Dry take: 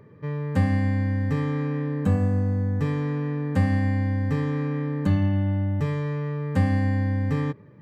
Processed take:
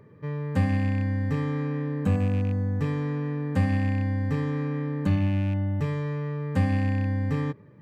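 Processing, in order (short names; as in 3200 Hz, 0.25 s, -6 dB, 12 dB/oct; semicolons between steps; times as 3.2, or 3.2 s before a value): rattling part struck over -19 dBFS, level -31 dBFS; gain -2 dB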